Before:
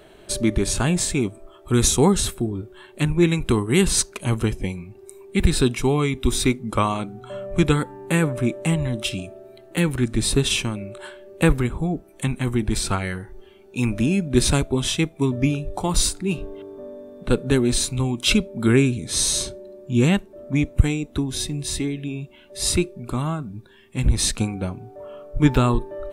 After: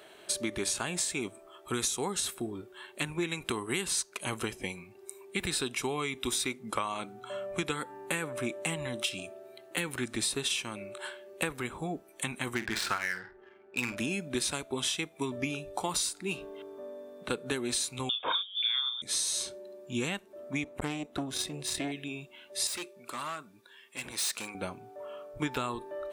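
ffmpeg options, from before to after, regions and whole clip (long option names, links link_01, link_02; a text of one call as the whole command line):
ffmpeg -i in.wav -filter_complex "[0:a]asettb=1/sr,asplit=3[link_01][link_02][link_03];[link_01]atrim=end=12.554[link_04];[link_02]atrim=start=12.55:end=13.97,asetpts=PTS-STARTPTS,afade=type=in:duration=0.004:curve=qsin,afade=type=out:start_time=1.416:duration=0.004:curve=qsin,equalizer=frequency=1700:width_type=o:width=0.9:gain=12,adynamicsmooth=sensitivity=4:basefreq=970,asplit=2[link_05][link_06];[link_06]adelay=49,volume=-13dB[link_07];[link_05][link_07]amix=inputs=2:normalize=0,atrim=end_sample=62622[link_08];[link_03]atrim=start=13.966[link_09];[link_04][link_08]acrossfade=duration=0.004:curve1=hsin:curve2=qsin[link_10];[link_10][link_09]acrossfade=duration=0.004:curve1=qsin:curve2=hsin,asettb=1/sr,asplit=3[link_11][link_12][link_13];[link_11]atrim=end=18.094[link_14];[link_12]atrim=start=18.09:end=19.02,asetpts=PTS-STARTPTS,afade=type=in:duration=0.004:curve=qsin,afade=type=out:start_time=0.926:duration=0.004:curve=qsin,lowpass=frequency=3100:width_type=q:width=0.5098,lowpass=frequency=3100:width_type=q:width=0.6013,lowpass=frequency=3100:width_type=q:width=0.9,lowpass=frequency=3100:width_type=q:width=2.563,afreqshift=-3700,asplit=2[link_15][link_16];[link_16]adelay=30,volume=-6.5dB[link_17];[link_15][link_17]amix=inputs=2:normalize=0,atrim=end_sample=41013[link_18];[link_13]atrim=start=19.016[link_19];[link_14][link_18]acrossfade=duration=0.004:curve1=hsin:curve2=qsin[link_20];[link_20][link_19]acrossfade=duration=0.004:curve1=qsin:curve2=hsin,asettb=1/sr,asplit=3[link_21][link_22][link_23];[link_21]atrim=end=20.644[link_24];[link_22]atrim=start=20.64:end=21.92,asetpts=PTS-STARTPTS,afade=type=in:duration=0.004:curve=qsin,afade=type=out:start_time=1.276:duration=0.004:curve=qsin,highshelf=frequency=2400:gain=-8.5,acontrast=64,aeval=exprs='(tanh(5.01*val(0)+0.8)-tanh(0.8))/5.01':channel_layout=same[link_25];[link_23]atrim=start=21.916[link_26];[link_24][link_25]acrossfade=duration=0.004:curve1=hsin:curve2=qsin[link_27];[link_27][link_26]acrossfade=duration=0.004:curve1=qsin:curve2=hsin,asettb=1/sr,asplit=3[link_28][link_29][link_30];[link_28]atrim=end=22.674[link_31];[link_29]atrim=start=22.67:end=24.55,asetpts=PTS-STARTPTS,afade=type=in:duration=0.004:curve=qsin,afade=type=out:start_time=1.876:duration=0.004:curve=qsin,highpass=frequency=580:poles=1,bandreject=frequency=760:width=9.7,volume=28dB,asoftclip=hard,volume=-28dB[link_32];[link_30]atrim=start=24.546[link_33];[link_31][link_32]acrossfade=duration=0.004:curve1=hsin:curve2=qsin[link_34];[link_34][link_33]acrossfade=duration=0.004:curve1=qsin:curve2=hsin,highpass=frequency=870:poles=1,acompressor=threshold=-28dB:ratio=10" out.wav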